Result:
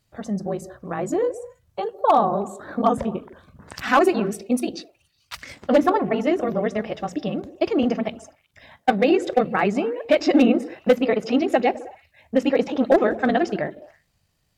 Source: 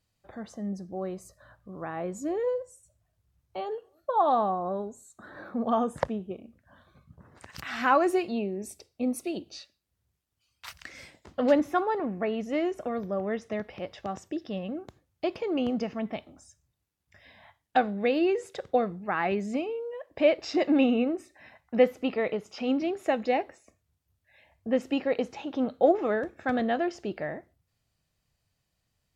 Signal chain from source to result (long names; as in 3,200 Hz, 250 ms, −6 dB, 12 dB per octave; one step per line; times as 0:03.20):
gain into a clipping stage and back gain 16.5 dB
echo through a band-pass that steps 105 ms, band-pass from 160 Hz, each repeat 0.7 octaves, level −9.5 dB
time stretch by overlap-add 0.5×, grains 39 ms
level +9 dB